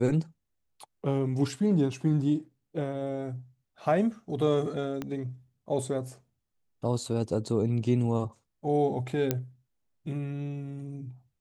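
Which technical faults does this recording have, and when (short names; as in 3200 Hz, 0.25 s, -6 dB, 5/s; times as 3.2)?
5.02 pop -20 dBFS
9.31 pop -11 dBFS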